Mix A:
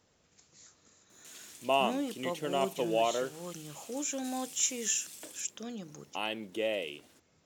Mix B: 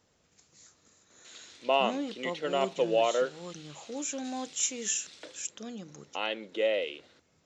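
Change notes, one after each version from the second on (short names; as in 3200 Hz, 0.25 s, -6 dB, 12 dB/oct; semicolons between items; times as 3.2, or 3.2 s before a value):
background: add speaker cabinet 240–5500 Hz, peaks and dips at 510 Hz +8 dB, 1400 Hz +6 dB, 2000 Hz +5 dB, 3900 Hz +8 dB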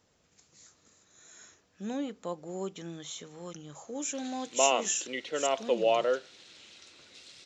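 background: entry +2.90 s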